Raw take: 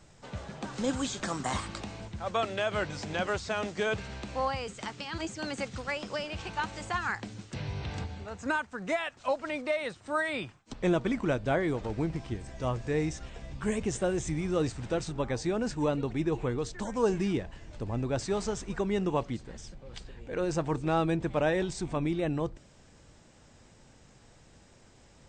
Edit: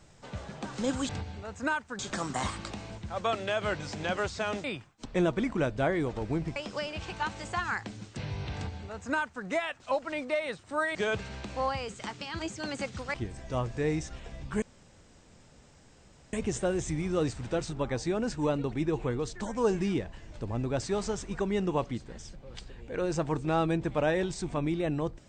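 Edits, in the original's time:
0:03.74–0:05.93: swap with 0:10.32–0:12.24
0:07.92–0:08.82: duplicate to 0:01.09
0:13.72: splice in room tone 1.71 s

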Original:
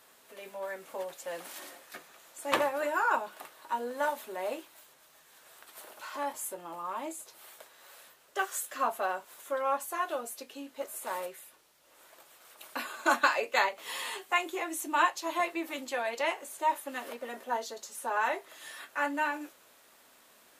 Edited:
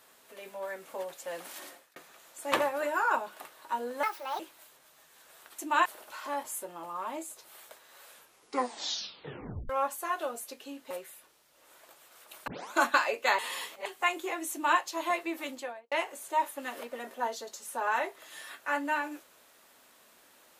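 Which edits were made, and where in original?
0:01.68–0:01.96: fade out
0:04.03–0:04.56: play speed 145%
0:07.96: tape stop 1.63 s
0:10.80–0:11.20: remove
0:12.77: tape start 0.25 s
0:13.68–0:14.15: reverse
0:14.81–0:15.08: duplicate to 0:05.75
0:15.77–0:16.21: fade out and dull

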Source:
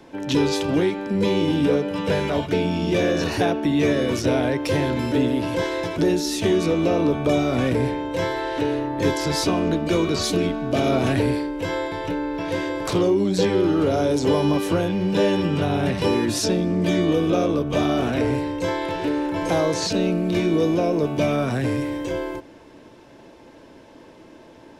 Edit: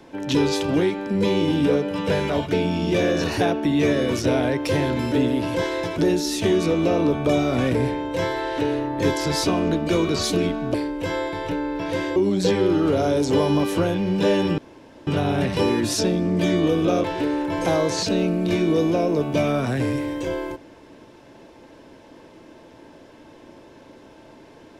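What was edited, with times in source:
0:10.74–0:11.33: remove
0:12.75–0:13.10: remove
0:15.52: splice in room tone 0.49 s
0:17.49–0:18.88: remove

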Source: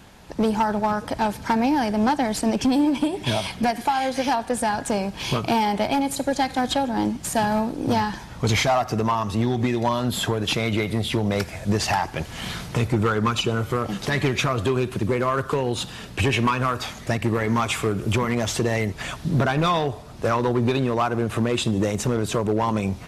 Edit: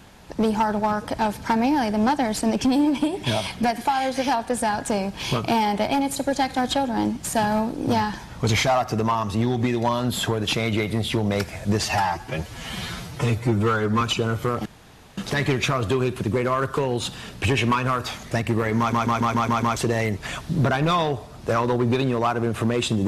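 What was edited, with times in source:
0:11.84–0:13.29: time-stretch 1.5×
0:13.93: splice in room tone 0.52 s
0:17.54: stutter in place 0.14 s, 7 plays

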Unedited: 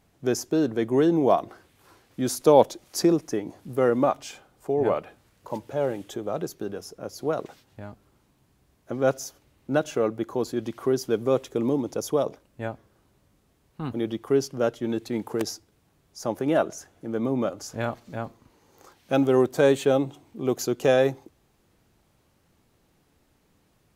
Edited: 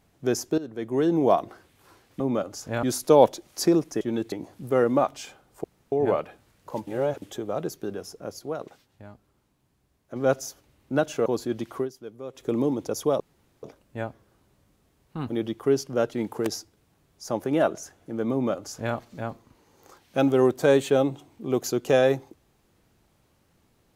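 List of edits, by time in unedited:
0:00.58–0:01.22: fade in linear, from −16.5 dB
0:04.70: splice in room tone 0.28 s
0:05.65–0:06.00: reverse
0:07.17–0:08.94: clip gain −5.5 dB
0:10.04–0:10.33: remove
0:10.83–0:11.53: duck −15.5 dB, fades 0.13 s
0:12.27: splice in room tone 0.43 s
0:14.77–0:15.08: move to 0:03.38
0:17.27–0:17.90: duplicate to 0:02.20

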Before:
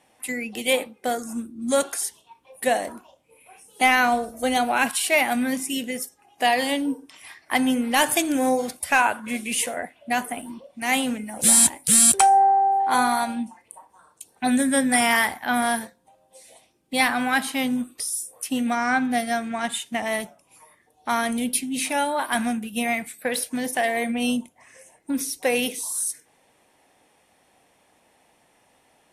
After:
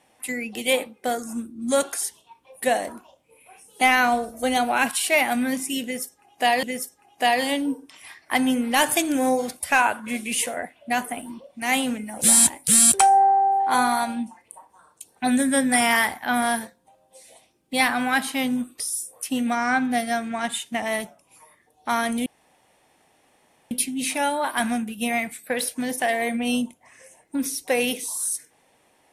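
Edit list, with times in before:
0:05.83–0:06.63: repeat, 2 plays
0:21.46: splice in room tone 1.45 s

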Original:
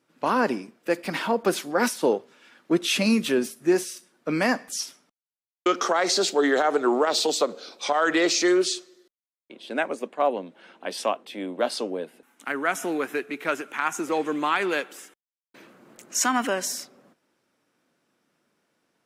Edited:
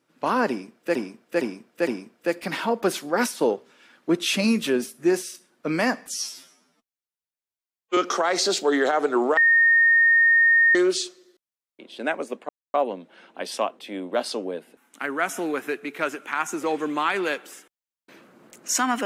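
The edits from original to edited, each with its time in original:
0:00.49–0:00.95: repeat, 4 plays
0:04.77–0:05.68: time-stretch 2×
0:07.08–0:08.46: beep over 1,840 Hz −13.5 dBFS
0:10.20: splice in silence 0.25 s

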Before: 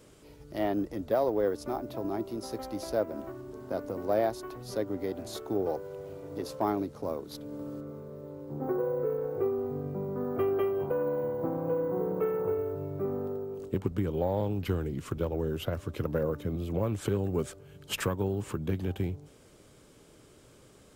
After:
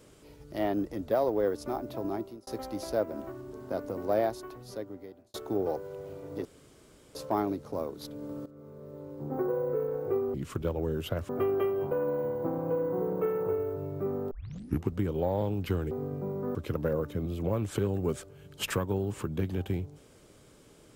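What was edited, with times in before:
0:02.13–0:02.47: fade out
0:04.18–0:05.34: fade out
0:06.45: splice in room tone 0.70 s
0:07.76–0:08.52: fade in equal-power, from −15 dB
0:09.64–0:10.28: swap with 0:14.90–0:15.85
0:13.30: tape start 0.57 s

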